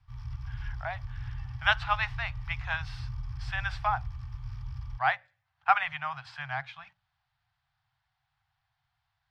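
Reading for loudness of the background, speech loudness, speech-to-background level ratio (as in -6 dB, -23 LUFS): -40.5 LUFS, -31.5 LUFS, 9.0 dB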